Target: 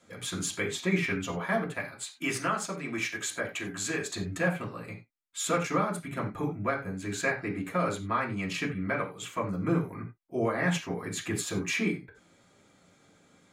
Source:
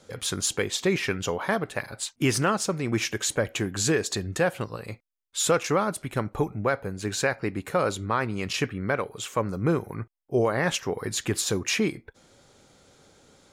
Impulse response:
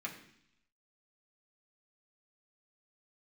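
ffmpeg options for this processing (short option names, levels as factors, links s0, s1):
-filter_complex "[0:a]asettb=1/sr,asplit=3[s0][s1][s2];[s0]atrim=end=1.844[s3];[s1]atrim=start=1.84:end=4.13,asetpts=PTS-STARTPTS,afade=t=in:d=0.004:c=qsin,afade=t=out:st=2.286:d=0.004:c=qsin,lowshelf=f=340:g=-9.5[s4];[s2]atrim=start=4.126[s5];[s3][s4]acrossfade=d=0.004:c1=hsin:c2=qsin[s6];[s6][s5]acrossfade=d=0.004:c1=qsin:c2=hsin[s7];[1:a]atrim=start_sample=2205,atrim=end_sample=4410,asetrate=41895,aresample=44100[s8];[s7][s8]afir=irnorm=-1:irlink=0,volume=0.668"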